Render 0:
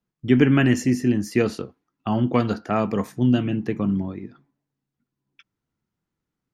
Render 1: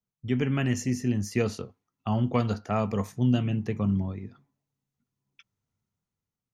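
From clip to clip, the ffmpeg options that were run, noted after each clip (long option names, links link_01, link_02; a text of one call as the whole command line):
ffmpeg -i in.wav -af "equalizer=frequency=100:width_type=o:width=0.33:gain=9,equalizer=frequency=315:width_type=o:width=0.33:gain=-10,equalizer=frequency=1600:width_type=o:width=0.33:gain=-5,equalizer=frequency=6300:width_type=o:width=0.33:gain=6,dynaudnorm=framelen=220:gausssize=7:maxgain=6dB,volume=-8.5dB" out.wav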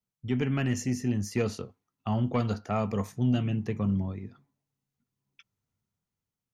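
ffmpeg -i in.wav -af "asoftclip=type=tanh:threshold=-14.5dB,volume=-1dB" out.wav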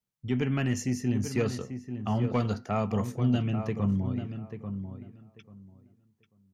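ffmpeg -i in.wav -filter_complex "[0:a]asplit=2[link_01][link_02];[link_02]adelay=840,lowpass=frequency=1900:poles=1,volume=-8.5dB,asplit=2[link_03][link_04];[link_04]adelay=840,lowpass=frequency=1900:poles=1,volume=0.19,asplit=2[link_05][link_06];[link_06]adelay=840,lowpass=frequency=1900:poles=1,volume=0.19[link_07];[link_01][link_03][link_05][link_07]amix=inputs=4:normalize=0" out.wav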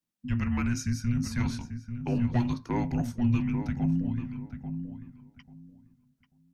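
ffmpeg -i in.wav -af "afreqshift=-360" out.wav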